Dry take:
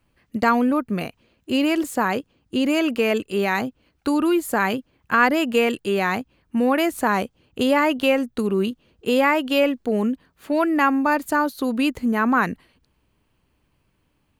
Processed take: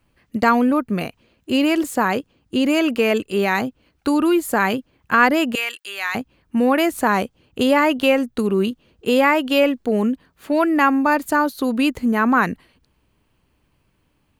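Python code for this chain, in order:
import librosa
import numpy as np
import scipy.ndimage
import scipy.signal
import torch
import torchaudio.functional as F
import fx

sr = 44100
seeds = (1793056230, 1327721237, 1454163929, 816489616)

y = fx.highpass(x, sr, hz=1500.0, slope=12, at=(5.55, 6.15))
y = F.gain(torch.from_numpy(y), 2.5).numpy()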